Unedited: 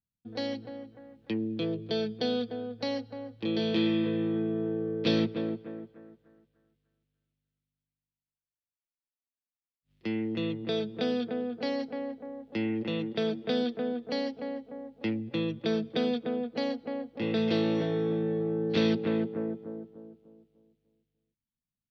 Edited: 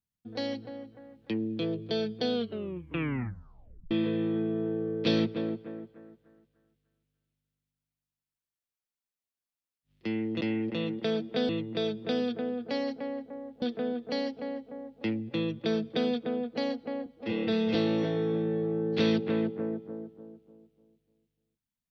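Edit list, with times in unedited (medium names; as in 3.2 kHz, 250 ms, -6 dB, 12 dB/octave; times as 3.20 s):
2.34 s: tape stop 1.57 s
12.54–13.62 s: move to 10.41 s
17.06–17.52 s: stretch 1.5×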